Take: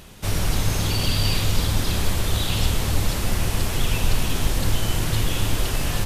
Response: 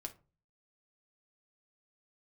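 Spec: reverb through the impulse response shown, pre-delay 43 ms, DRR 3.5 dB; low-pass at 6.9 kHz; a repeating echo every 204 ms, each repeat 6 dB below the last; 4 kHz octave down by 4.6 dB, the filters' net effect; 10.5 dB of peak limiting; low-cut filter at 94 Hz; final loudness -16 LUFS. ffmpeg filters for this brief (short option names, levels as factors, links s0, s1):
-filter_complex "[0:a]highpass=94,lowpass=6900,equalizer=f=4000:t=o:g=-5.5,alimiter=limit=0.0631:level=0:latency=1,aecho=1:1:204|408|612|816|1020|1224:0.501|0.251|0.125|0.0626|0.0313|0.0157,asplit=2[s0][s1];[1:a]atrim=start_sample=2205,adelay=43[s2];[s1][s2]afir=irnorm=-1:irlink=0,volume=1[s3];[s0][s3]amix=inputs=2:normalize=0,volume=5.31"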